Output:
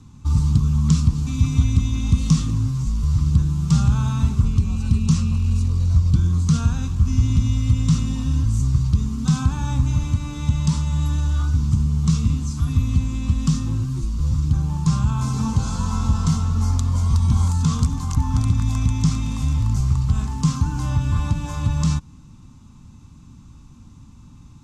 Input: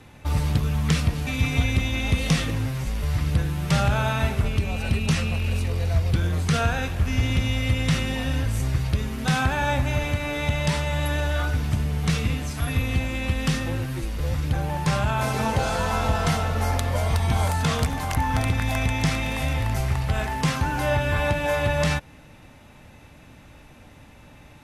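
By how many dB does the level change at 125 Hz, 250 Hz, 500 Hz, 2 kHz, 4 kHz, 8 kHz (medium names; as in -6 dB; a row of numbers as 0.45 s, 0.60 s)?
+5.5 dB, +4.5 dB, -16.0 dB, -14.0 dB, -5.5 dB, +1.5 dB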